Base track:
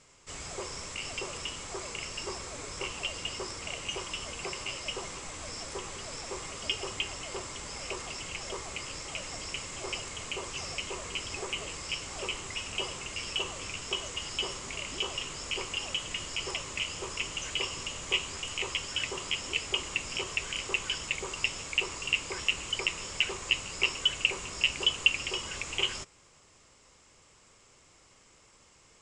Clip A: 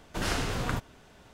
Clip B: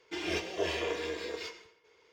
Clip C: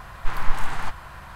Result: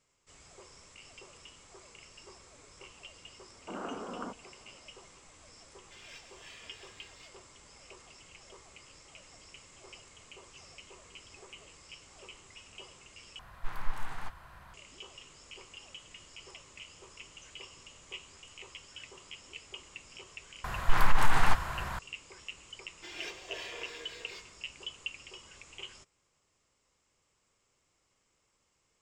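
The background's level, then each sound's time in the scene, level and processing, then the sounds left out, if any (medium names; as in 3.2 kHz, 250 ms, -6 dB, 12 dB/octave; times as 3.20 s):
base track -15.5 dB
3.53 s: add A -5 dB + elliptic band-pass 210–1300 Hz
5.79 s: add B -14 dB + high-pass 1.4 kHz
13.39 s: replace with C -12 dB
20.64 s: add C -9.5 dB + loudness maximiser +13.5 dB
22.91 s: add B -5.5 dB + high-pass 1.1 kHz 6 dB/octave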